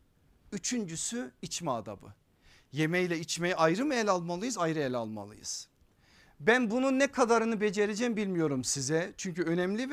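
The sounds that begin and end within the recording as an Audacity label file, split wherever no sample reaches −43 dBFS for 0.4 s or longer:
0.530000	2.110000	sound
2.730000	5.640000	sound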